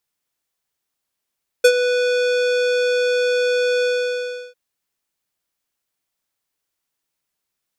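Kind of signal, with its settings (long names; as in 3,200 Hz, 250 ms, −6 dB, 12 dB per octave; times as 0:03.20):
subtractive voice square B4 12 dB per octave, low-pass 5,000 Hz, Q 1, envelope 1.5 octaves, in 0.07 s, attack 8.9 ms, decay 0.07 s, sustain −10 dB, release 0.71 s, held 2.19 s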